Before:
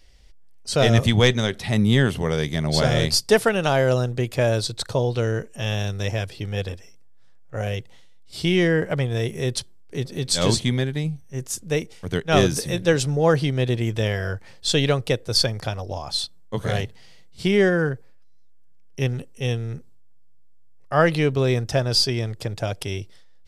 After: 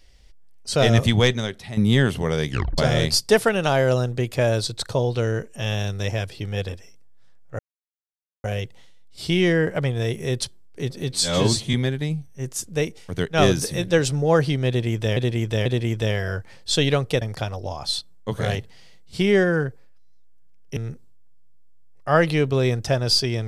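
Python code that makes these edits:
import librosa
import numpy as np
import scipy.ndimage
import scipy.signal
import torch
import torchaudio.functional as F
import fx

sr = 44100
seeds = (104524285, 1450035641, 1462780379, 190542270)

y = fx.edit(x, sr, fx.fade_out_to(start_s=1.13, length_s=0.64, floor_db=-12.5),
    fx.tape_stop(start_s=2.49, length_s=0.29),
    fx.insert_silence(at_s=7.59, length_s=0.85),
    fx.stretch_span(start_s=10.27, length_s=0.41, factor=1.5),
    fx.repeat(start_s=13.62, length_s=0.49, count=3),
    fx.cut(start_s=15.18, length_s=0.29),
    fx.cut(start_s=19.02, length_s=0.59), tone=tone)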